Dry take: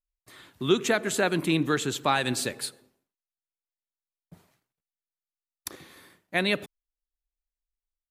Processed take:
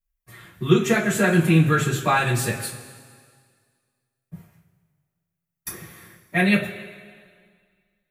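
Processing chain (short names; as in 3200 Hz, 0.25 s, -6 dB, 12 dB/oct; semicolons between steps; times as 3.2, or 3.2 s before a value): graphic EQ 125/250/500/1000/4000/8000 Hz +7/-7/-5/-5/-11/-5 dB; two-slope reverb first 0.24 s, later 1.9 s, from -18 dB, DRR -9.5 dB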